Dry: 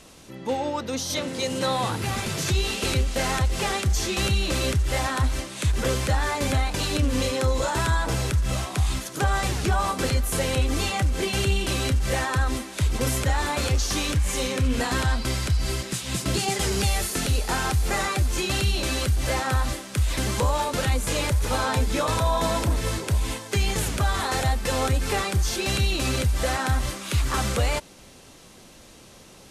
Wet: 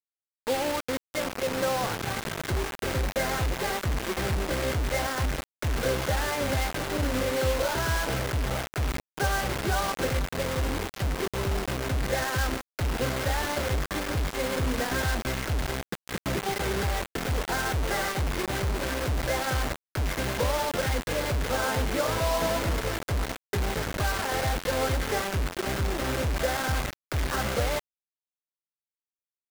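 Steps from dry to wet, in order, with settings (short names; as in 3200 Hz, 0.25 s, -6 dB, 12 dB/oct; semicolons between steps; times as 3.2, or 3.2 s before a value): rippled Chebyshev low-pass 2200 Hz, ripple 6 dB; 10.2–12.12 dynamic EQ 1100 Hz, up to -8 dB, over -46 dBFS, Q 0.73; bit-crush 5-bit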